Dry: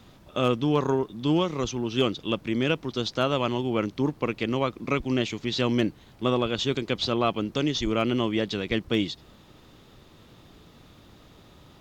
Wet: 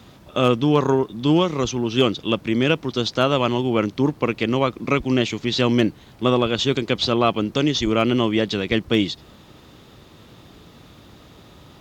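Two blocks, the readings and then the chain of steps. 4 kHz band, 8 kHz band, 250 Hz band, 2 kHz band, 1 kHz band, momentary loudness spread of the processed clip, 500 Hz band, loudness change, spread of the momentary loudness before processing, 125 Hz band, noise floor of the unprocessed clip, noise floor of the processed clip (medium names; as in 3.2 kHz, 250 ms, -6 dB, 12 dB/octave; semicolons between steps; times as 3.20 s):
+6.0 dB, +6.0 dB, +6.0 dB, +6.0 dB, +6.0 dB, 4 LU, +6.0 dB, +6.0 dB, 4 LU, +6.0 dB, -53 dBFS, -48 dBFS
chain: high-pass 44 Hz; trim +6 dB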